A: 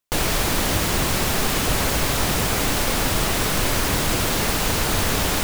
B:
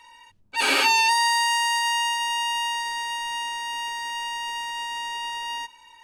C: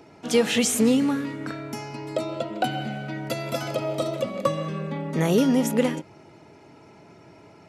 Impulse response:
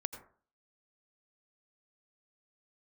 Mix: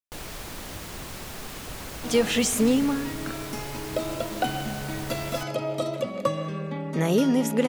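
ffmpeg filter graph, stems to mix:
-filter_complex "[0:a]volume=-16.5dB[a];[2:a]adelay=1800,volume=-1.5dB[b];[a][b]amix=inputs=2:normalize=0"

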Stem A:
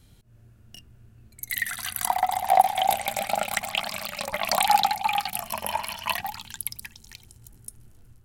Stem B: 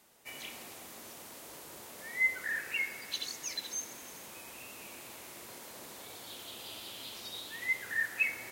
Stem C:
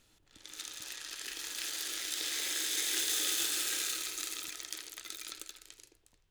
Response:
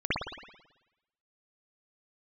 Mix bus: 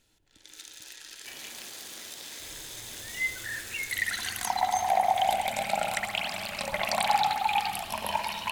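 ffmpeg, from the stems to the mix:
-filter_complex "[0:a]lowpass=9.4k,adelay=2400,volume=-3dB,asplit=2[a][b];[b]volume=-15dB[c];[1:a]adelay=1000,volume=-1.5dB[d];[2:a]acompressor=threshold=-38dB:ratio=6,volume=-1.5dB[e];[a][e]amix=inputs=2:normalize=0,asuperstop=centerf=1200:order=4:qfactor=6.4,alimiter=limit=-15dB:level=0:latency=1:release=402,volume=0dB[f];[3:a]atrim=start_sample=2205[g];[c][g]afir=irnorm=-1:irlink=0[h];[d][f][h]amix=inputs=3:normalize=0"

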